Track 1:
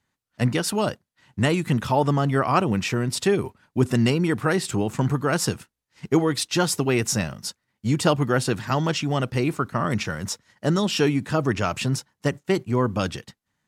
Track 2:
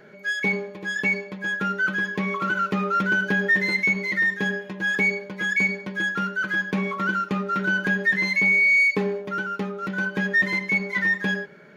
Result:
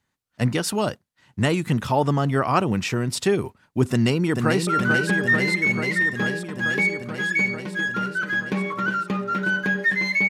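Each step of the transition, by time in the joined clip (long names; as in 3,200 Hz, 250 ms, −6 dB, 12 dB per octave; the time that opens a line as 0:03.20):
track 1
0:03.91–0:04.67: delay throw 440 ms, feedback 80%, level −5 dB
0:04.67: continue with track 2 from 0:02.88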